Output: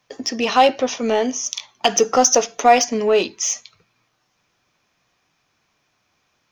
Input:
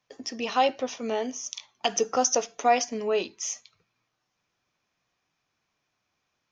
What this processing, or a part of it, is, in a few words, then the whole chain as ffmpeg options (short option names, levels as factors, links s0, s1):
parallel distortion: -filter_complex "[0:a]asplit=2[s0][s1];[s1]asoftclip=type=hard:threshold=0.0398,volume=0.398[s2];[s0][s2]amix=inputs=2:normalize=0,volume=2.51"